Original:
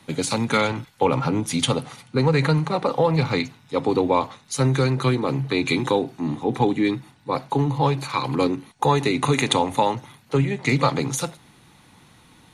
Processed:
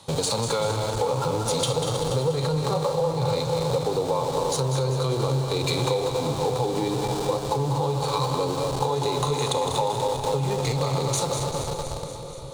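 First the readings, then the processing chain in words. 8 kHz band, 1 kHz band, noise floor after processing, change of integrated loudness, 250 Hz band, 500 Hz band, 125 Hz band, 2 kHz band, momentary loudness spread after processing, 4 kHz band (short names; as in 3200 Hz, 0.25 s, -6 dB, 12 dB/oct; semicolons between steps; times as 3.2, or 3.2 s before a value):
+2.0 dB, -2.5 dB, -33 dBFS, -2.5 dB, -7.5 dB, -0.5 dB, -2.0 dB, -10.0 dB, 2 LU, -0.5 dB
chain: regenerating reverse delay 0.12 s, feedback 82%, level -13.5 dB; harmonic-percussive split percussive -9 dB; in parallel at -8.5 dB: Schmitt trigger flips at -34.5 dBFS; on the sum: limiter -15 dBFS, peak gain reduction 7 dB; graphic EQ 125/250/500/1000/2000/4000/8000 Hz +5/-10/+11/+7/-9/+9/+10 dB; compressor, threshold -22 dBFS, peak gain reduction 12 dB; on a send: split-band echo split 660 Hz, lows 0.511 s, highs 0.194 s, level -8.5 dB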